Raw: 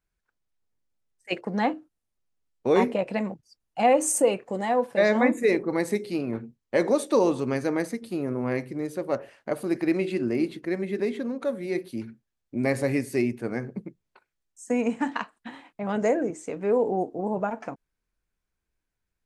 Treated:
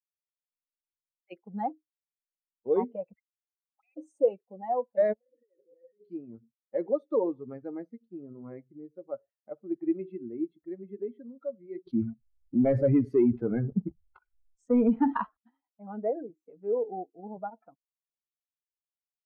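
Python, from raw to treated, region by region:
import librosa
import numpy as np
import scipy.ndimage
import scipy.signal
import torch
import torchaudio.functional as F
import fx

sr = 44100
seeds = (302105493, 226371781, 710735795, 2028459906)

y = fx.chain(x, sr, fx.auto_wah(base_hz=330.0, top_hz=2500.0, q=22.0, full_db=-22.5, direction='up'),
    fx.level_steps(step_db=23),
    fx.leveller(passes=1), at=(3.13, 3.97))
y = fx.chain(y, sr, fx.over_compress(threshold_db=-31.0, ratio=-1.0),
    fx.formant_cascade(vowel='e'), at=(5.13, 6.01))
y = fx.chain(y, sr, fx.leveller(passes=2),
    fx.env_flatten(amount_pct=50), at=(11.87, 15.37))
y = fx.bin_expand(y, sr, power=2.0)
y = scipy.signal.sosfilt(scipy.signal.cheby1(2, 1.0, 770.0, 'lowpass', fs=sr, output='sos'), y)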